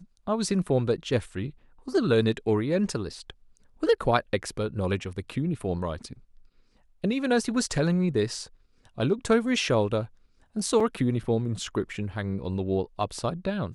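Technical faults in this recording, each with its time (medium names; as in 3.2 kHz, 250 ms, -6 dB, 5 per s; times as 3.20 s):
10.80 s: dropout 4.6 ms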